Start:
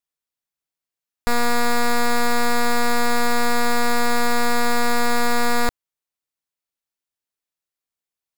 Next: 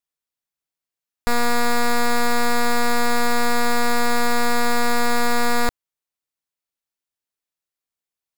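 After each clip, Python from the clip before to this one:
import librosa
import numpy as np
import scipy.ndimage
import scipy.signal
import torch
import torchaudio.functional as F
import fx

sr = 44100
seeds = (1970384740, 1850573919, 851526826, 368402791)

y = x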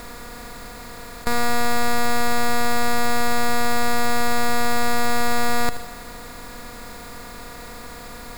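y = fx.bin_compress(x, sr, power=0.2)
y = fx.echo_feedback(y, sr, ms=78, feedback_pct=56, wet_db=-13)
y = y * librosa.db_to_amplitude(-2.0)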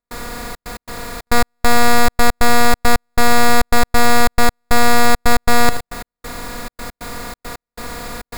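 y = fx.step_gate(x, sr, bpm=137, pattern='.xxxx.x.xxx.x.', floor_db=-60.0, edge_ms=4.5)
y = y * librosa.db_to_amplitude(8.5)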